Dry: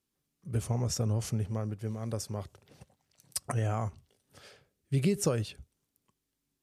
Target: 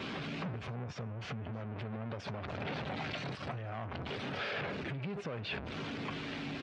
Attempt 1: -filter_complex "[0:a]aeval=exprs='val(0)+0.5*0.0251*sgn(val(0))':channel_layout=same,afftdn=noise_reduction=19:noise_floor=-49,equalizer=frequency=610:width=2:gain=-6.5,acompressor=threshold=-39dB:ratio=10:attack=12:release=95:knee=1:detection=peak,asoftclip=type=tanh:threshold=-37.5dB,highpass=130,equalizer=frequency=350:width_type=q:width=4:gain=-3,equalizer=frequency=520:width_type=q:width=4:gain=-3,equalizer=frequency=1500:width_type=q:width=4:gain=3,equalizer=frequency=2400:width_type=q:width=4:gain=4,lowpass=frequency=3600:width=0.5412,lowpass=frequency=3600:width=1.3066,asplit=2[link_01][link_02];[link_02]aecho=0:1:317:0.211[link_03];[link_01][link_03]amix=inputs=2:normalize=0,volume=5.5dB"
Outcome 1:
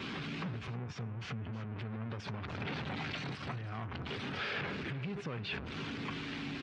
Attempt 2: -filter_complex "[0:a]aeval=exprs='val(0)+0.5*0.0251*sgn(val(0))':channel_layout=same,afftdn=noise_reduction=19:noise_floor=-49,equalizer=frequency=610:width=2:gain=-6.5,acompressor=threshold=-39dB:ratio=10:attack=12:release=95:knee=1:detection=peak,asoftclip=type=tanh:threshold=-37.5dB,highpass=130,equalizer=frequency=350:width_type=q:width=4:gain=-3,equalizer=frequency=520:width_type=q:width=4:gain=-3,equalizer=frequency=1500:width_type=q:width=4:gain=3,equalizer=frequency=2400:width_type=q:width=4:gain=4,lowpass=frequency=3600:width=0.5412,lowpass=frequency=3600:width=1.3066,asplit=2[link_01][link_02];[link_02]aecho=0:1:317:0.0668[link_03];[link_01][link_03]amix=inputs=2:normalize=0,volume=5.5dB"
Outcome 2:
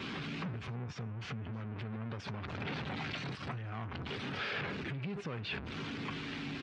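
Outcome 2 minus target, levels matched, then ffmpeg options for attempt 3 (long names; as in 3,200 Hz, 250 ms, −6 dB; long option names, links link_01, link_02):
500 Hz band −3.5 dB
-filter_complex "[0:a]aeval=exprs='val(0)+0.5*0.0251*sgn(val(0))':channel_layout=same,afftdn=noise_reduction=19:noise_floor=-49,equalizer=frequency=610:width=2:gain=4,acompressor=threshold=-39dB:ratio=10:attack=12:release=95:knee=1:detection=peak,asoftclip=type=tanh:threshold=-37.5dB,highpass=130,equalizer=frequency=350:width_type=q:width=4:gain=-3,equalizer=frequency=520:width_type=q:width=4:gain=-3,equalizer=frequency=1500:width_type=q:width=4:gain=3,equalizer=frequency=2400:width_type=q:width=4:gain=4,lowpass=frequency=3600:width=0.5412,lowpass=frequency=3600:width=1.3066,asplit=2[link_01][link_02];[link_02]aecho=0:1:317:0.0668[link_03];[link_01][link_03]amix=inputs=2:normalize=0,volume=5.5dB"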